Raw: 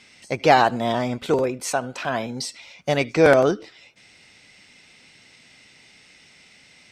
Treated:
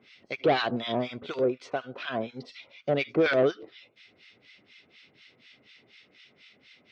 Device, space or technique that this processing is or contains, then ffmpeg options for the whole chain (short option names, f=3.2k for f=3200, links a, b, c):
guitar amplifier with harmonic tremolo: -filter_complex "[0:a]acrossover=split=1200[a][b];[a]aeval=exprs='val(0)*(1-1/2+1/2*cos(2*PI*4.1*n/s))':c=same[c];[b]aeval=exprs='val(0)*(1-1/2-1/2*cos(2*PI*4.1*n/s))':c=same[d];[c][d]amix=inputs=2:normalize=0,asoftclip=type=tanh:threshold=-16dB,highpass=110,equalizer=f=170:t=q:w=4:g=-5,equalizer=f=400:t=q:w=4:g=4,equalizer=f=880:t=q:w=4:g=-8,equalizer=f=1.7k:t=q:w=4:g=-3,equalizer=f=3.4k:t=q:w=4:g=4,lowpass=f=4.4k:w=0.5412,lowpass=f=4.4k:w=1.3066"